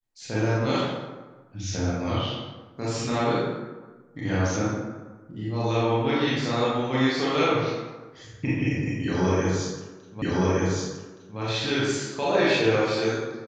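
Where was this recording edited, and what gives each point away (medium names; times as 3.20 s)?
10.22 s: repeat of the last 1.17 s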